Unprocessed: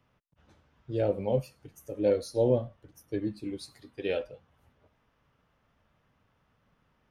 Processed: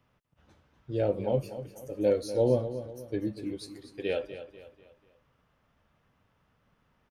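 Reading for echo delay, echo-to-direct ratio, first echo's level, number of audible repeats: 245 ms, −11.5 dB, −12.0 dB, 3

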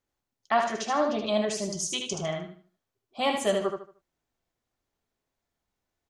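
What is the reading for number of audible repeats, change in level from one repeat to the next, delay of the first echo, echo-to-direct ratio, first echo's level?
3, −10.5 dB, 76 ms, −5.0 dB, −5.5 dB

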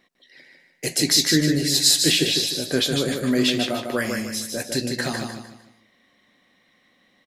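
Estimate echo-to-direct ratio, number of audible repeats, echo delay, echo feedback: −4.5 dB, 4, 151 ms, 36%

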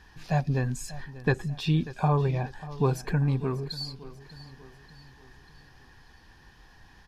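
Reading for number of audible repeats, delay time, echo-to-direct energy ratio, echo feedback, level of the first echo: 3, 590 ms, −16.0 dB, 48%, −17.0 dB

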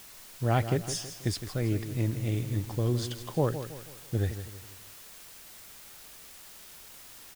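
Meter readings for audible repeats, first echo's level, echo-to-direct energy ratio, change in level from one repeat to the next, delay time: 4, −11.0 dB, −10.0 dB, −7.5 dB, 162 ms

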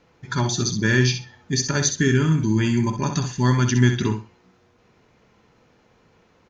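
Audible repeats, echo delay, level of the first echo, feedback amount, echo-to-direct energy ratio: 2, 64 ms, −8.0 dB, 18%, −8.0 dB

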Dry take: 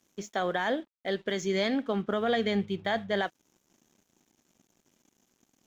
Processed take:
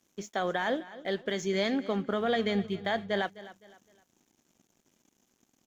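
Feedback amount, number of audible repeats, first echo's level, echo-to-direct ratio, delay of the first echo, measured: 34%, 2, −17.0 dB, −16.5 dB, 257 ms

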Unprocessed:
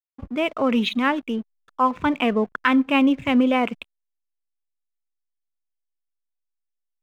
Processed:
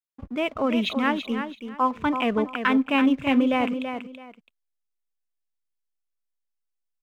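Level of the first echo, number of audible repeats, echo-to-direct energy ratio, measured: −8.0 dB, 2, −8.0 dB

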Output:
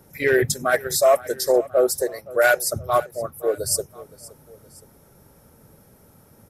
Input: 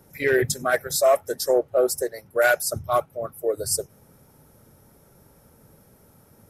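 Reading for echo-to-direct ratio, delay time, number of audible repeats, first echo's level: −19.0 dB, 519 ms, 2, −20.0 dB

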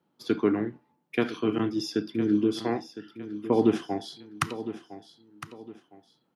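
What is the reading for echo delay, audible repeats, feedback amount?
1,009 ms, 3, 33%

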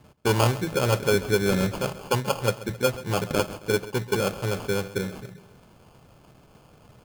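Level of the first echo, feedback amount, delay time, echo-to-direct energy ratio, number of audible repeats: −17.0 dB, 52%, 134 ms, −15.5 dB, 4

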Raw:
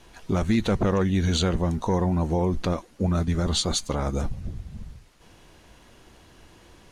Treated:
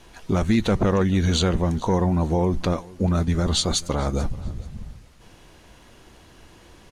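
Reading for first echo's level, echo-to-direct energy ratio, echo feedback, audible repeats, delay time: −22.0 dB, −22.0 dB, 24%, 2, 437 ms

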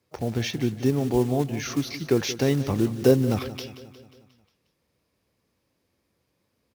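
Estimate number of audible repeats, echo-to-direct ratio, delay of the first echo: 5, −13.0 dB, 179 ms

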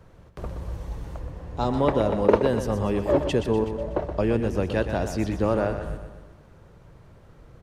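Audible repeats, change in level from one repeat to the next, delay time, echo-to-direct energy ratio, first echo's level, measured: 5, −5.5 dB, 123 ms, −7.5 dB, −9.0 dB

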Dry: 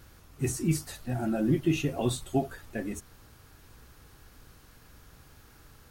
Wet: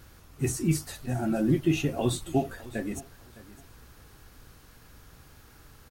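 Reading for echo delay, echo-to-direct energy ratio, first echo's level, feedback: 610 ms, −19.0 dB, −19.0 dB, 19%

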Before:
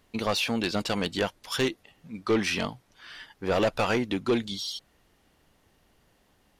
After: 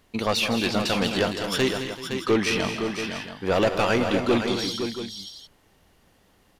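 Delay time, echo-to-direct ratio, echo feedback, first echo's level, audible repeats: 162 ms, −3.5 dB, repeats not evenly spaced, −11.5 dB, 6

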